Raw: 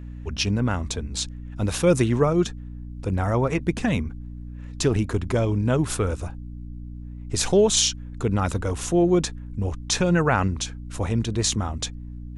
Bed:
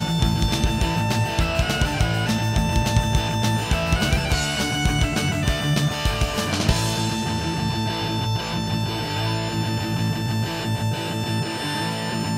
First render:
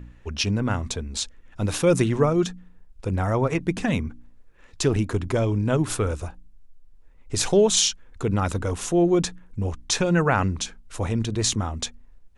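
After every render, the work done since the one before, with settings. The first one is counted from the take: de-hum 60 Hz, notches 5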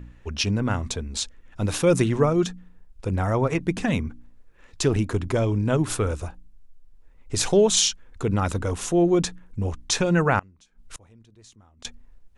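10.39–11.85 flipped gate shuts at -24 dBFS, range -28 dB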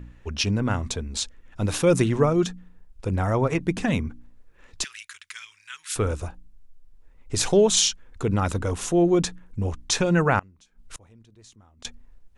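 4.84–5.96 inverse Chebyshev high-pass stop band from 660 Hz, stop band 50 dB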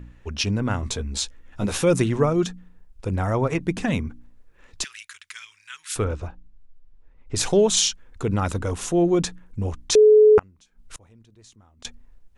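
0.81–1.84 doubler 15 ms -4 dB; 6.04–7.36 air absorption 140 m; 9.95–10.38 bleep 427 Hz -9 dBFS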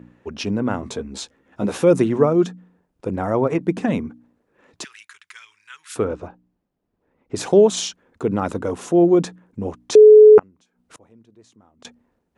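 HPF 220 Hz 12 dB/oct; tilt shelf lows +7 dB, about 1400 Hz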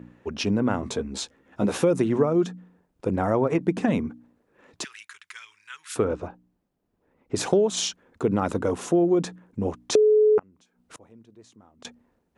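compressor 6:1, threshold -17 dBFS, peak gain reduction 10.5 dB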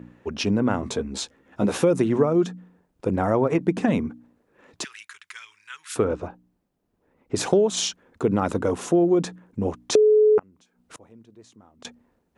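gain +1.5 dB

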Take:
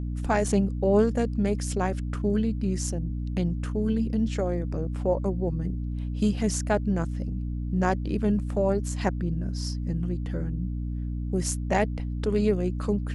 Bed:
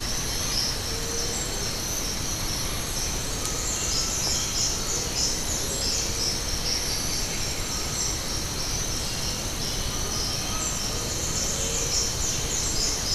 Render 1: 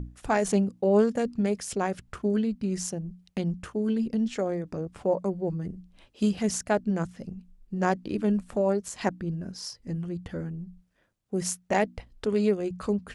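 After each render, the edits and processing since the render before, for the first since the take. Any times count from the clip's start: notches 60/120/180/240/300 Hz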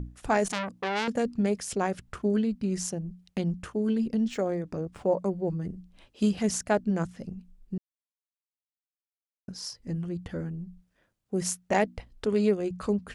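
0.47–1.08 core saturation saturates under 3300 Hz; 4.3–5.19 median filter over 3 samples; 7.78–9.48 mute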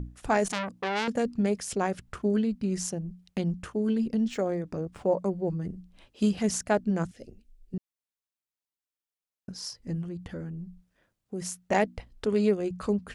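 7.11–7.74 fixed phaser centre 430 Hz, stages 4; 10.02–11.64 compressor 2:1, threshold -35 dBFS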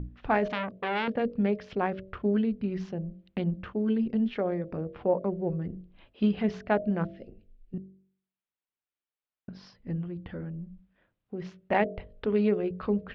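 inverse Chebyshev low-pass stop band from 8000 Hz, stop band 50 dB; de-hum 47.62 Hz, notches 14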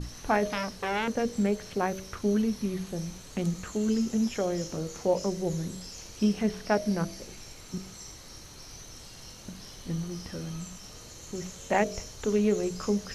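add bed -18 dB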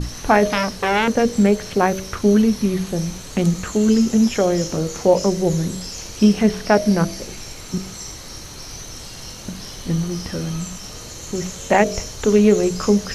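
gain +11.5 dB; limiter -3 dBFS, peak gain reduction 2.5 dB

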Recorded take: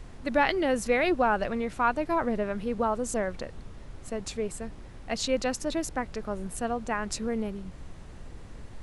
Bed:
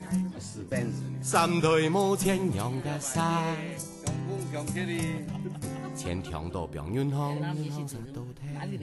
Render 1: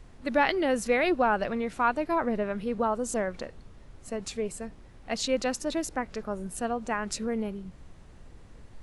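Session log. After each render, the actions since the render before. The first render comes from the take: noise print and reduce 6 dB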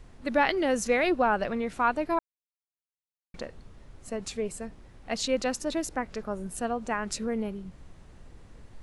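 0.57–1.07 bell 6400 Hz +7 dB 0.49 oct; 2.19–3.34 mute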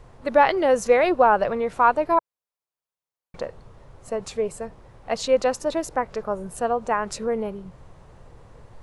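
graphic EQ 125/250/500/1000 Hz +7/-4/+8/+8 dB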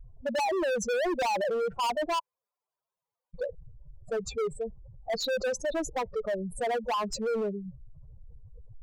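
spectral contrast raised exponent 3.1; hard clip -26.5 dBFS, distortion -4 dB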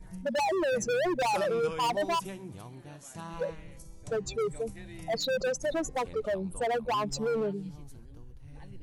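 add bed -15 dB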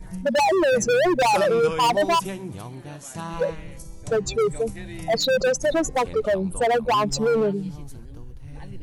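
gain +9 dB

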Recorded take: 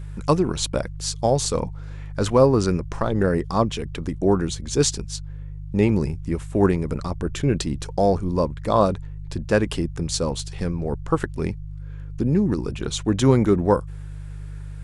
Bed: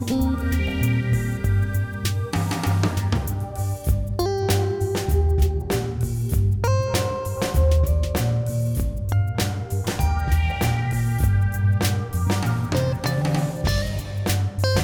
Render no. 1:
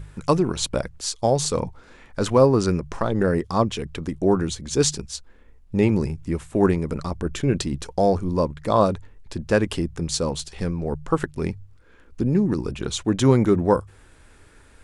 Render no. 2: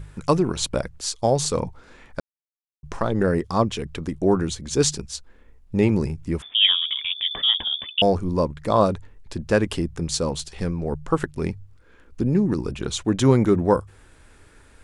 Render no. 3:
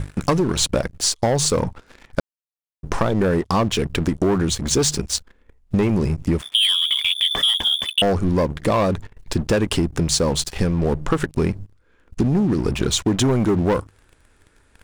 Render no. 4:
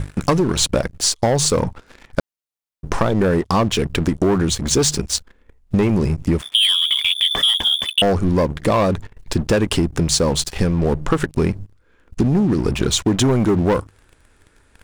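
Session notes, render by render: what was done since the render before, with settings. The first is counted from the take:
de-hum 50 Hz, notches 3
2.2–2.83 mute; 6.42–8.02 inverted band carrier 3500 Hz
sample leveller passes 3; compressor, threshold -16 dBFS, peak gain reduction 9 dB
gain +2 dB

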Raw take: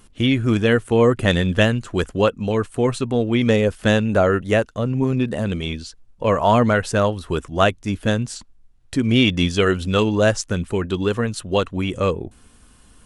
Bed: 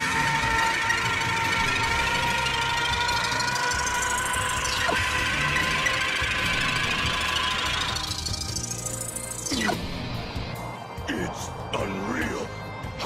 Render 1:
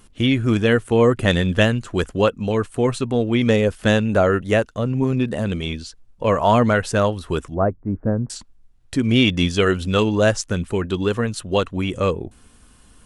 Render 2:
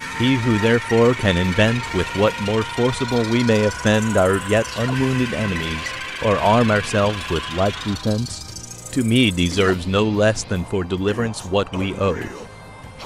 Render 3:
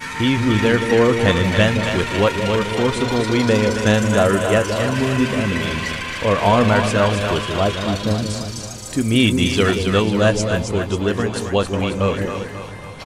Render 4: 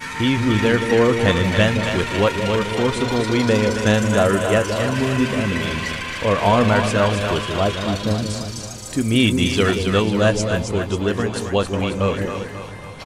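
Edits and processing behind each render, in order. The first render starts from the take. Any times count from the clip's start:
7.54–8.3 Gaussian blur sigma 7.8 samples
add bed -4 dB
doubler 20 ms -14 dB; split-band echo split 550 Hz, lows 0.173 s, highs 0.27 s, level -6 dB
gain -1 dB

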